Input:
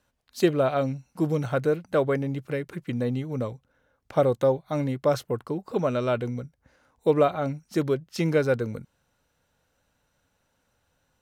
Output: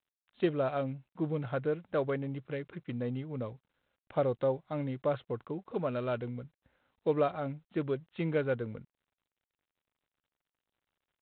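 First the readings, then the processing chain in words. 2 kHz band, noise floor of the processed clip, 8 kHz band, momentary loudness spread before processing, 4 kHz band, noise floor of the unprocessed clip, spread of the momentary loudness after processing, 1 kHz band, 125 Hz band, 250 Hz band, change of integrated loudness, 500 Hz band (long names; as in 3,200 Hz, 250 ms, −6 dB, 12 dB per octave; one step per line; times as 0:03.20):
−8.0 dB, below −85 dBFS, can't be measured, 10 LU, −10.5 dB, −73 dBFS, 10 LU, −8.0 dB, −8.0 dB, −8.0 dB, −8.0 dB, −8.0 dB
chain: level −8 dB
G.726 32 kbit/s 8,000 Hz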